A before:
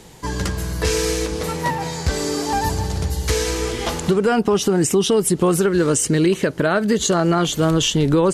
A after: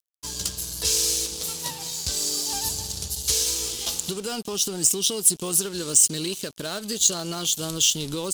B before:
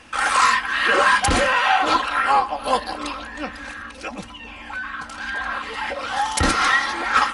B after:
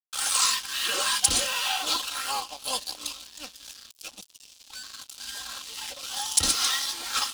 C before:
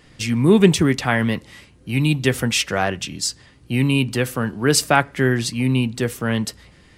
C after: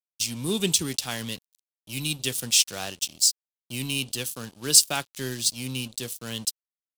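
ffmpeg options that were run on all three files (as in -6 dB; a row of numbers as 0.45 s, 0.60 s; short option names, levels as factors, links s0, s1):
-af "aeval=exprs='sgn(val(0))*max(abs(val(0))-0.0211,0)':c=same,aexciter=amount=6.8:drive=7:freq=2900,volume=0.2"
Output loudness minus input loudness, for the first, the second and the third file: -3.5 LU, -6.0 LU, -5.0 LU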